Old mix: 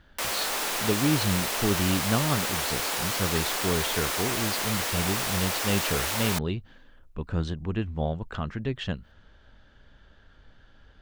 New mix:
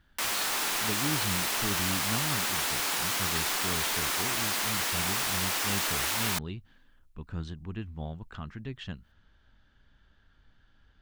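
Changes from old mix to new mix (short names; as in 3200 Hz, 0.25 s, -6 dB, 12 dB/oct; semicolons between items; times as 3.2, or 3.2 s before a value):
speech -7.5 dB; master: add bell 530 Hz -7.5 dB 0.89 oct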